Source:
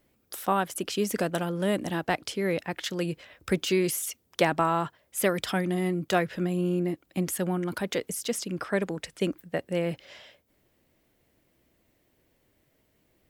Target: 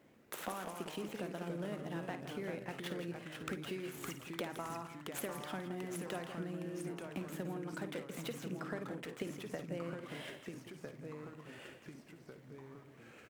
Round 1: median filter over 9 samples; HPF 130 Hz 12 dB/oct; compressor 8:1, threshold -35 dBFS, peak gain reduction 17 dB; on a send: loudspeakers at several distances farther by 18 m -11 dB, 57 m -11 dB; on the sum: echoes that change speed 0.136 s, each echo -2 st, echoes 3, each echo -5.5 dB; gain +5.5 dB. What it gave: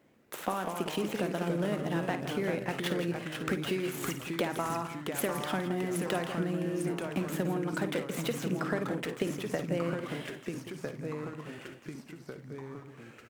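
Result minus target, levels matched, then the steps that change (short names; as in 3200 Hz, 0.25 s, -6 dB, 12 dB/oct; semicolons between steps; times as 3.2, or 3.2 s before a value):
compressor: peak gain reduction -10 dB
change: compressor 8:1, threshold -46.5 dBFS, peak gain reduction 27 dB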